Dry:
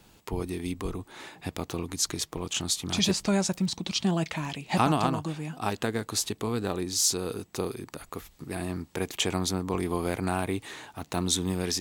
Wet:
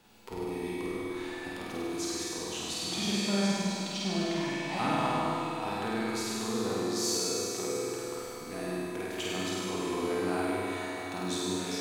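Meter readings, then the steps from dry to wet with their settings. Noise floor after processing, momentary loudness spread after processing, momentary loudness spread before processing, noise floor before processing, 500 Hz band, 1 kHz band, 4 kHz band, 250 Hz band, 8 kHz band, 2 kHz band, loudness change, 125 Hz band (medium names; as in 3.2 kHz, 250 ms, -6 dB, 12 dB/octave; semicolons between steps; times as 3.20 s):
-40 dBFS, 8 LU, 13 LU, -60 dBFS, -0.5 dB, -1.5 dB, -3.5 dB, -2.0 dB, -5.5 dB, 0.0 dB, -3.0 dB, -7.5 dB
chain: bass shelf 170 Hz -10.5 dB; harmonic-percussive split percussive -6 dB; treble shelf 5.3 kHz -6 dB; in parallel at +1 dB: compression, threshold -44 dBFS, peak gain reduction 19.5 dB; on the sum: feedback comb 250 Hz, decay 0.97 s, mix 80%; on a send: flutter echo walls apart 8.6 m, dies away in 1.3 s; on the sum: Schroeder reverb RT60 3.3 s, combs from 32 ms, DRR -2 dB; trim +6 dB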